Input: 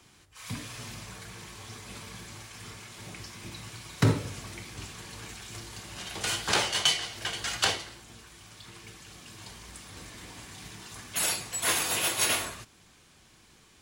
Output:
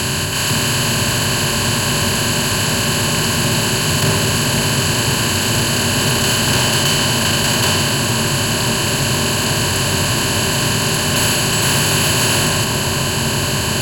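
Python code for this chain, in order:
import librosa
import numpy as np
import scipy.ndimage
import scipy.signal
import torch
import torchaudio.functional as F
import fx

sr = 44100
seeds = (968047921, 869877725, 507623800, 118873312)

p1 = fx.bin_compress(x, sr, power=0.2)
p2 = fx.ripple_eq(p1, sr, per_octave=1.4, db=10)
p3 = fx.leveller(p2, sr, passes=3)
p4 = p3 + fx.echo_bbd(p3, sr, ms=500, stages=4096, feedback_pct=84, wet_db=-8, dry=0)
y = p4 * 10.0 ** (-7.0 / 20.0)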